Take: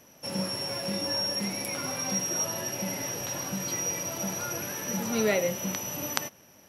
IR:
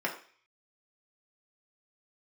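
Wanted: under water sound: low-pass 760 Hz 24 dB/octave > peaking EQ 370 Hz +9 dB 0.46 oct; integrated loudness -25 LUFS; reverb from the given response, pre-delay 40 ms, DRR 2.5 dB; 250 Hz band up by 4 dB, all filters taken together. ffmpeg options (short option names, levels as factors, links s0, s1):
-filter_complex "[0:a]equalizer=f=250:t=o:g=3,asplit=2[s0][s1];[1:a]atrim=start_sample=2205,adelay=40[s2];[s1][s2]afir=irnorm=-1:irlink=0,volume=0.316[s3];[s0][s3]amix=inputs=2:normalize=0,lowpass=f=760:w=0.5412,lowpass=f=760:w=1.3066,equalizer=f=370:t=o:w=0.46:g=9,volume=1.68"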